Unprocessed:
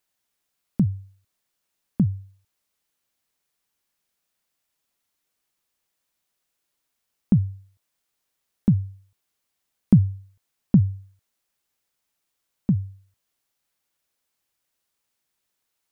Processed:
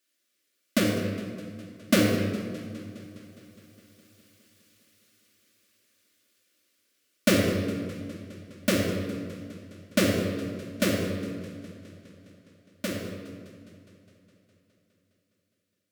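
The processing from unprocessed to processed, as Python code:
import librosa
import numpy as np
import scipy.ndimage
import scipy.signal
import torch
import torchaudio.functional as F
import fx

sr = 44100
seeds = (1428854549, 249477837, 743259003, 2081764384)

p1 = fx.halfwave_hold(x, sr)
p2 = fx.doppler_pass(p1, sr, speed_mps=13, closest_m=13.0, pass_at_s=4.2)
p3 = scipy.signal.sosfilt(scipy.signal.bessel(2, 170.0, 'highpass', norm='mag', fs=sr, output='sos'), p2)
p4 = fx.fixed_phaser(p3, sr, hz=350.0, stages=4)
p5 = 10.0 ** (-28.5 / 20.0) * np.tanh(p4 / 10.0 ** (-28.5 / 20.0))
p6 = p4 + (p5 * 10.0 ** (-5.0 / 20.0))
p7 = fx.room_shoebox(p6, sr, seeds[0], volume_m3=2300.0, walls='mixed', distance_m=2.5)
p8 = fx.echo_warbled(p7, sr, ms=206, feedback_pct=73, rate_hz=2.8, cents=88, wet_db=-18)
y = p8 * 10.0 ** (7.0 / 20.0)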